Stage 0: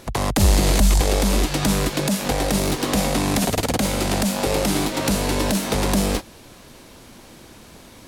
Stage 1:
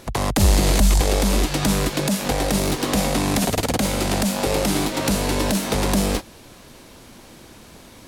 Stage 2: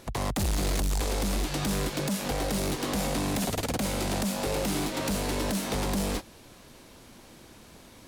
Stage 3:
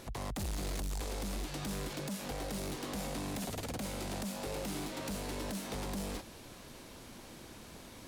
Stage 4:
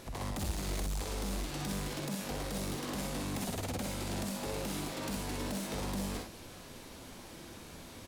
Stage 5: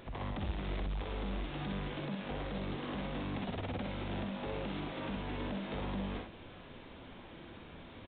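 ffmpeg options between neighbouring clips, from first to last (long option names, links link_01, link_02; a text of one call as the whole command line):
ffmpeg -i in.wav -af anull out.wav
ffmpeg -i in.wav -af "asoftclip=type=hard:threshold=-18dB,volume=-6.5dB" out.wav
ffmpeg -i in.wav -af "alimiter=level_in=10.5dB:limit=-24dB:level=0:latency=1:release=25,volume=-10.5dB" out.wav
ffmpeg -i in.wav -af "aecho=1:1:50|62:0.447|0.596" out.wav
ffmpeg -i in.wav -af "aresample=8000,aresample=44100,volume=-1dB" out.wav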